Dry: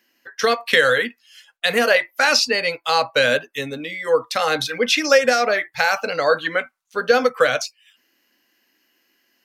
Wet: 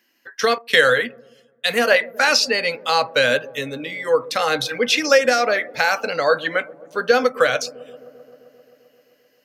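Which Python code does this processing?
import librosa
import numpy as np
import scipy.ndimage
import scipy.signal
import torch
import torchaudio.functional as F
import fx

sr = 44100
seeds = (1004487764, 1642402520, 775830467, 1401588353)

y = fx.echo_wet_lowpass(x, sr, ms=131, feedback_pct=79, hz=540.0, wet_db=-17.5)
y = fx.band_widen(y, sr, depth_pct=70, at=(0.58, 1.95))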